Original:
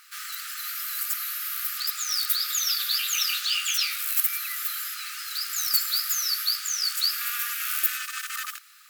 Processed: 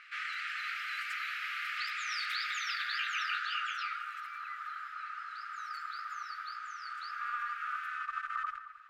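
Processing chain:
low-pass filter sweep 2,300 Hz → 1,100 Hz, 0:02.35–0:04.26
on a send: delay that swaps between a low-pass and a high-pass 221 ms, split 2,300 Hz, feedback 51%, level −13 dB
on the sum: level −2 dB

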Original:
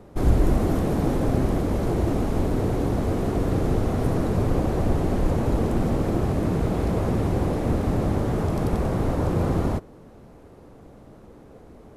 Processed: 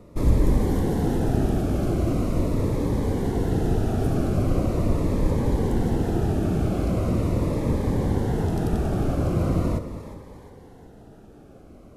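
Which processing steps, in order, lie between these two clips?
on a send: echo with a time of its own for lows and highs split 440 Hz, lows 199 ms, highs 357 ms, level −11.5 dB
on the sum: phaser whose notches keep moving one way falling 0.41 Hz

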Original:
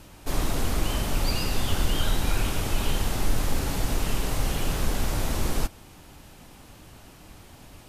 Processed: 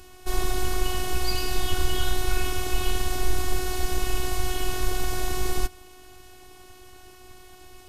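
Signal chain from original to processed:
phases set to zero 368 Hz
level +3 dB

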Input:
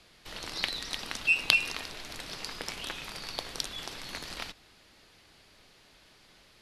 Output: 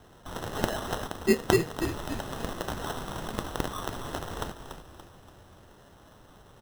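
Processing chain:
parametric band 92 Hz +10 dB 1.3 octaves
decimation without filtering 19×
echo with shifted repeats 287 ms, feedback 44%, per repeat −51 Hz, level −8.5 dB
0:01.07–0:01.82: expander for the loud parts 1.5 to 1, over −34 dBFS
level +3.5 dB

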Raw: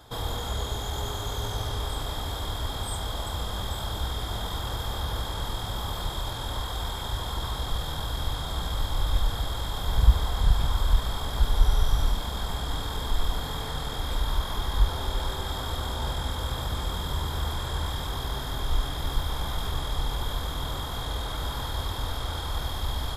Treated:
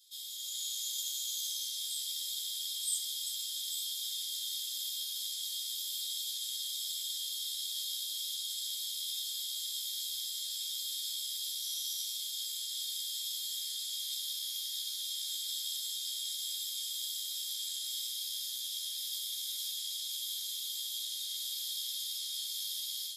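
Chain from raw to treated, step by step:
inverse Chebyshev high-pass filter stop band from 910 Hz, stop band 70 dB
automatic gain control gain up to 6.5 dB
string-ensemble chorus
level +2.5 dB

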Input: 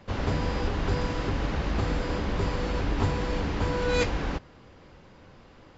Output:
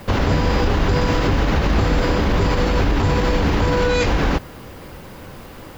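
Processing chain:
background noise blue −66 dBFS
boost into a limiter +22.5 dB
level −8 dB

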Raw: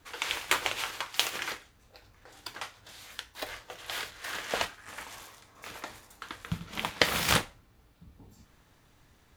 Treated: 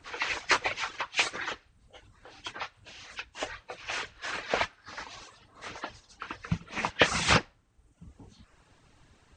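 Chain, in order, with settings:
hearing-aid frequency compression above 1,500 Hz 1.5 to 1
reverb reduction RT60 0.79 s
level +4 dB

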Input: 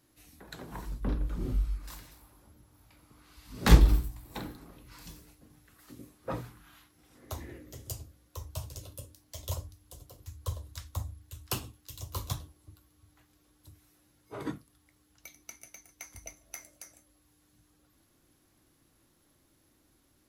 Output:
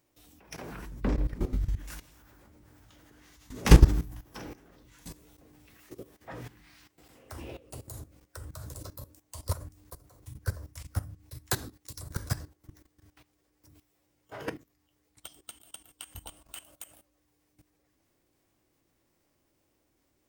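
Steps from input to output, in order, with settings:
output level in coarse steps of 16 dB
formants moved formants +6 semitones
level +6.5 dB

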